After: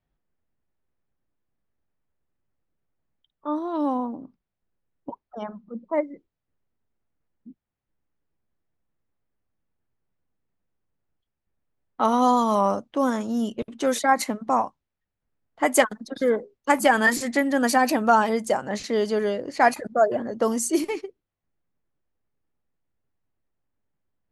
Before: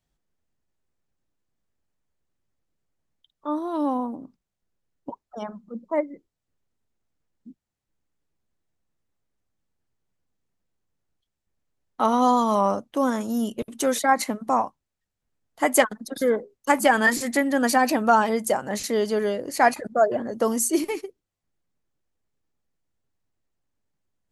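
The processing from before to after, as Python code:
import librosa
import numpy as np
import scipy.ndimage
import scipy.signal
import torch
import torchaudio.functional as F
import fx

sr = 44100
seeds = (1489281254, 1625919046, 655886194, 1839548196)

y = fx.env_lowpass(x, sr, base_hz=2400.0, full_db=-16.5)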